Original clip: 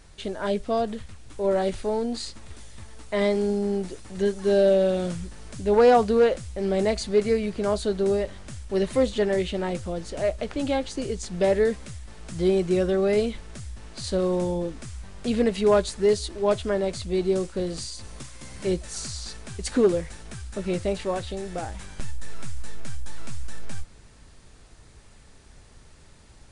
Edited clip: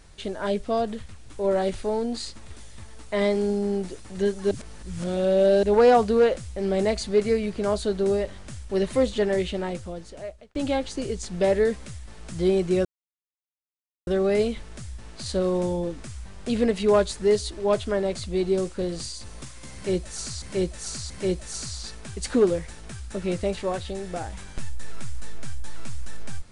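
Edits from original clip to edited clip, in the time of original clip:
0:04.51–0:05.63: reverse
0:09.48–0:10.55: fade out
0:12.85: splice in silence 1.22 s
0:18.52–0:19.20: repeat, 3 plays

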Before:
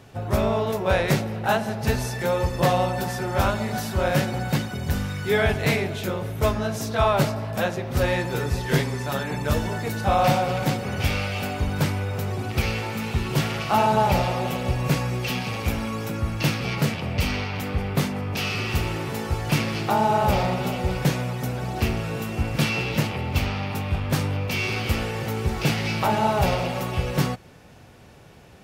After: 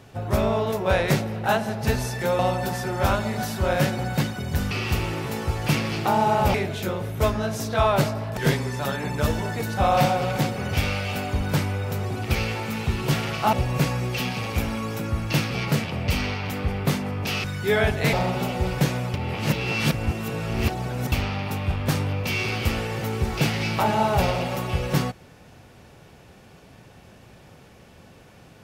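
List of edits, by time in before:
0:02.39–0:02.74: remove
0:05.06–0:05.75: swap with 0:18.54–0:20.37
0:07.58–0:08.64: remove
0:13.80–0:14.63: remove
0:21.38–0:23.36: reverse

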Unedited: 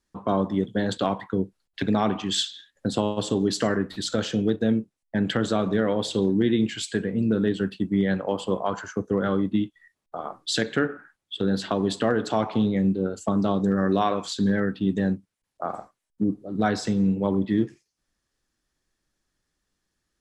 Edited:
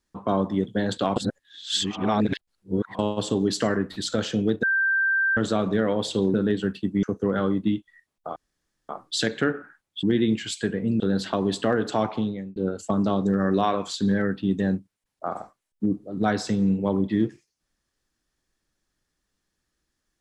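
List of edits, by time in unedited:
0:01.16–0:02.99: reverse
0:04.63–0:05.37: beep over 1,570 Hz −19 dBFS
0:06.34–0:07.31: move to 0:11.38
0:08.00–0:08.91: remove
0:10.24: splice in room tone 0.53 s
0:12.43–0:12.94: fade out

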